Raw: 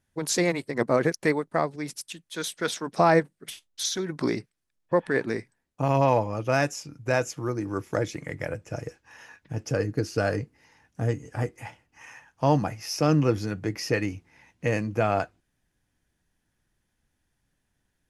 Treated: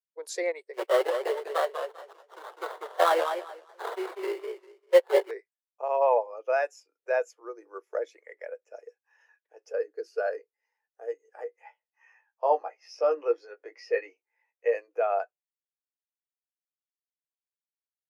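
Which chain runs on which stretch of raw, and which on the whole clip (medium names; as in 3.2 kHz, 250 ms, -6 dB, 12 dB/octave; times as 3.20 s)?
0.73–5.31 s: comb 5.3 ms, depth 85% + sample-rate reducer 2.5 kHz, jitter 20% + modulated delay 198 ms, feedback 33%, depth 145 cents, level -5 dB
11.44–14.75 s: distance through air 67 m + doubling 17 ms -4.5 dB
whole clip: steep high-pass 400 Hz 48 dB/octave; dynamic bell 6 kHz, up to -4 dB, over -47 dBFS, Q 2.5; spectral contrast expander 1.5:1; trim -3.5 dB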